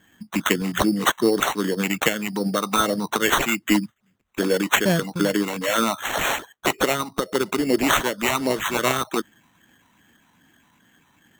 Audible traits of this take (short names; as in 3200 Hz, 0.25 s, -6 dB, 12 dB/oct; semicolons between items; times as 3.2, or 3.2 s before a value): phasing stages 12, 2.5 Hz, lowest notch 480–1000 Hz; aliases and images of a low sample rate 4900 Hz, jitter 0%